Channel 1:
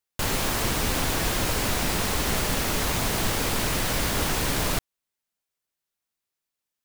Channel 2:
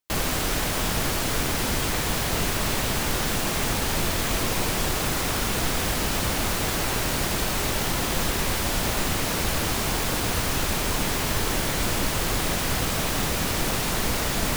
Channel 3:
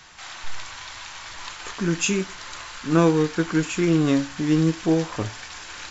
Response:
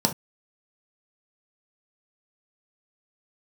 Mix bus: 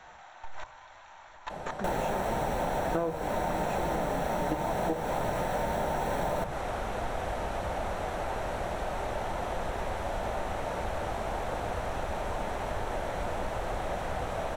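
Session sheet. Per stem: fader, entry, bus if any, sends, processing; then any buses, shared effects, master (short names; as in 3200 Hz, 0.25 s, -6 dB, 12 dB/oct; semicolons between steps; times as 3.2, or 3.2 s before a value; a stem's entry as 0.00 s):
-2.5 dB, 1.65 s, send -13 dB, dry
-7.0 dB, 1.40 s, send -22.5 dB, Bessel low-pass 8800 Hz, order 2; auto duck -17 dB, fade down 2.00 s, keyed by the third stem
+0.5 dB, 0.00 s, send -18.5 dB, level quantiser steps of 17 dB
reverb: on, pre-delay 3 ms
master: EQ curve 110 Hz 0 dB, 260 Hz -11 dB, 650 Hz +6 dB, 4800 Hz -14 dB; compressor 12:1, threshold -26 dBFS, peak gain reduction 16.5 dB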